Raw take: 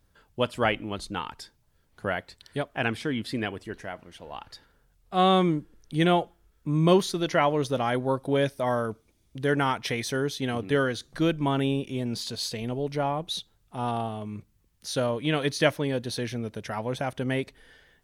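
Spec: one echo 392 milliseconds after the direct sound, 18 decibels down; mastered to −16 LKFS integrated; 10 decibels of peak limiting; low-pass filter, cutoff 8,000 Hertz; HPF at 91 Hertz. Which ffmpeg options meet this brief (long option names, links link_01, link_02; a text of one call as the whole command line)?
ffmpeg -i in.wav -af "highpass=91,lowpass=8000,alimiter=limit=-16dB:level=0:latency=1,aecho=1:1:392:0.126,volume=14dB" out.wav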